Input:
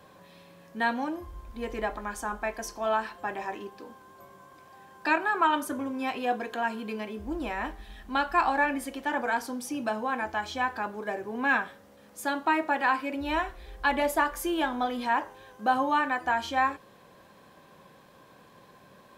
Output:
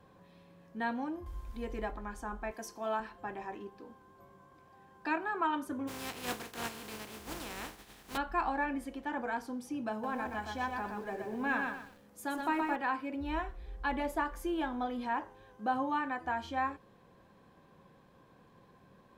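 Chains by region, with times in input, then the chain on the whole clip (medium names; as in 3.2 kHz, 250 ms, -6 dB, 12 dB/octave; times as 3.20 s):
1.26–1.91 s: treble shelf 4.2 kHz +6.5 dB + tape noise reduction on one side only encoder only
2.51–3.00 s: high-pass 140 Hz + treble shelf 5.7 kHz +9.5 dB
5.87–8.16 s: spectral contrast reduction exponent 0.27 + high-pass 100 Hz 6 dB/octave
9.91–12.76 s: high-pass 40 Hz + treble shelf 8.6 kHz +10.5 dB + bit-crushed delay 123 ms, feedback 35%, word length 8-bit, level -3.5 dB
whole clip: tilt EQ -2 dB/octave; band-stop 600 Hz, Q 12; trim -8 dB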